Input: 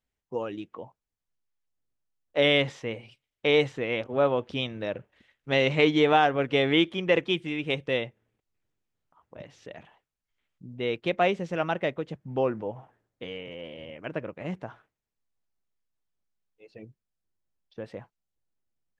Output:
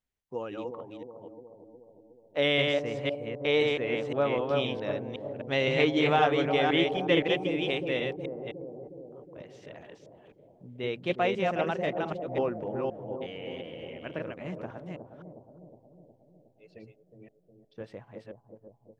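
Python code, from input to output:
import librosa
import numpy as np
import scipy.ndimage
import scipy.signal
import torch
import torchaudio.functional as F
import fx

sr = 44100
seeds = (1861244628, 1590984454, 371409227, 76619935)

y = fx.reverse_delay(x, sr, ms=258, wet_db=-2.5)
y = fx.echo_bbd(y, sr, ms=363, stages=2048, feedback_pct=62, wet_db=-8)
y = F.gain(torch.from_numpy(y), -4.0).numpy()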